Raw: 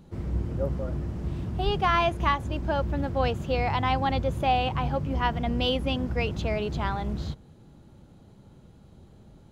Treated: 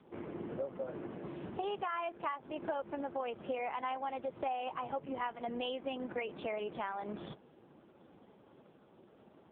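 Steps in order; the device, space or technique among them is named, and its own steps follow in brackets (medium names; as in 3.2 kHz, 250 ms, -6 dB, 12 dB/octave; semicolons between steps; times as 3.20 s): voicemail (band-pass 360–3000 Hz; compression 8:1, threshold -37 dBFS, peak gain reduction 17 dB; trim +3 dB; AMR-NB 4.75 kbps 8 kHz)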